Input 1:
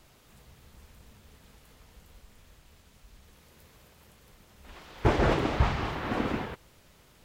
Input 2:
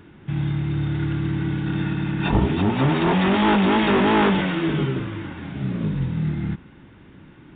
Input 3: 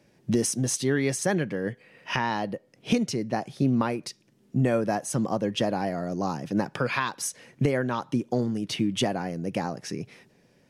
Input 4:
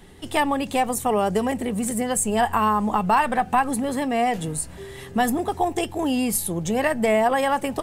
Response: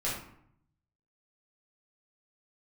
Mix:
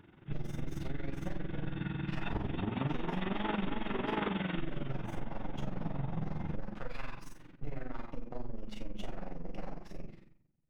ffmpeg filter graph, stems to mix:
-filter_complex "[0:a]acompressor=threshold=-31dB:ratio=6,bandpass=f=820:t=q:w=3.9:csg=0,volume=0dB[a];[1:a]volume=-9.5dB,asplit=2[b][c];[c]volume=-14dB[d];[2:a]agate=range=-33dB:threshold=-48dB:ratio=3:detection=peak,aemphasis=mode=reproduction:type=50kf,aeval=exprs='max(val(0),0)':c=same,volume=-10dB,asplit=2[e][f];[f]volume=-6dB[g];[e]lowpass=4.5k,acompressor=threshold=-41dB:ratio=6,volume=0dB[h];[4:a]atrim=start_sample=2205[i];[d][g]amix=inputs=2:normalize=0[j];[j][i]afir=irnorm=-1:irlink=0[k];[a][b][h][k]amix=inputs=4:normalize=0,tremolo=f=22:d=0.75,acompressor=threshold=-30dB:ratio=6"

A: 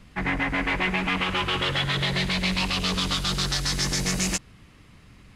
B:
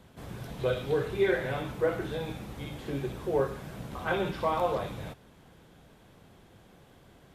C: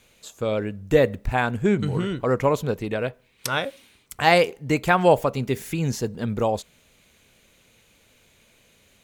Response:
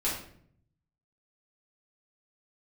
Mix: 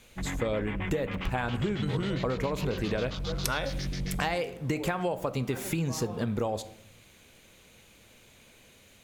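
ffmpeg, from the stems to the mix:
-filter_complex "[0:a]afwtdn=0.0316,lowshelf=f=200:g=11.5,volume=-12dB[a];[1:a]adelay=1450,volume=-11dB[b];[2:a]acompressor=threshold=-21dB:ratio=6,volume=0.5dB,asplit=2[c][d];[d]volume=-19.5dB[e];[3:a]atrim=start_sample=2205[f];[e][f]afir=irnorm=-1:irlink=0[g];[a][b][c][g]amix=inputs=4:normalize=0,acompressor=threshold=-26dB:ratio=6"

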